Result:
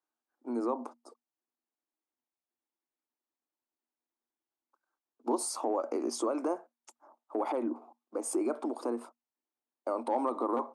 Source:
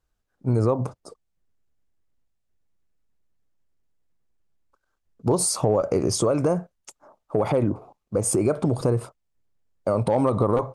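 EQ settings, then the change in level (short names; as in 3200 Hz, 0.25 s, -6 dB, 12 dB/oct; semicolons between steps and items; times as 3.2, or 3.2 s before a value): rippled Chebyshev high-pass 230 Hz, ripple 9 dB; -3.5 dB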